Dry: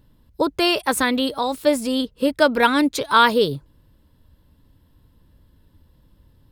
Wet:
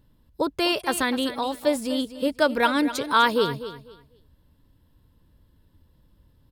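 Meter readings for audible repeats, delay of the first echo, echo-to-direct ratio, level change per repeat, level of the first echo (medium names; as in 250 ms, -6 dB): 2, 249 ms, -13.0 dB, -13.0 dB, -13.0 dB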